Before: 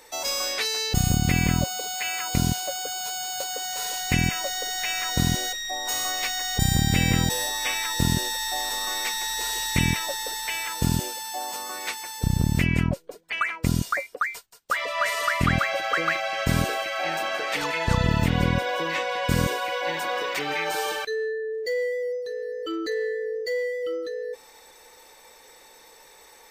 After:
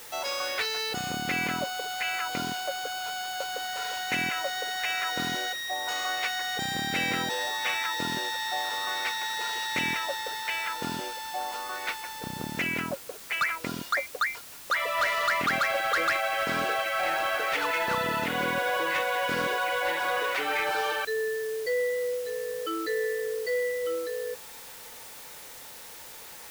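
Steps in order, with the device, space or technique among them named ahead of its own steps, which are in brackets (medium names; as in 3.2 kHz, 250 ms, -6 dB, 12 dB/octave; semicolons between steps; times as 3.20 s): drive-through speaker (band-pass 380–3600 Hz; peaking EQ 1.4 kHz +6 dB 0.25 oct; hard clipper -21.5 dBFS, distortion -13 dB; white noise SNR 15 dB)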